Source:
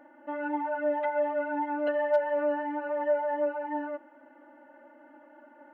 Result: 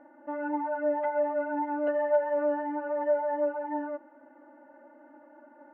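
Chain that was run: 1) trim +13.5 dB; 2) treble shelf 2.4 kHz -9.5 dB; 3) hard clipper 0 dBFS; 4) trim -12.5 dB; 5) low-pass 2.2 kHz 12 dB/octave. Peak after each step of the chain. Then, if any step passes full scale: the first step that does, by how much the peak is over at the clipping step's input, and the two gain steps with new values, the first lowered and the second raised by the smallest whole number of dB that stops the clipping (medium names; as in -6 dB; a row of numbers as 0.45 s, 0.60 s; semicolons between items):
-2.5 dBFS, -3.0 dBFS, -3.0 dBFS, -15.5 dBFS, -15.5 dBFS; nothing clips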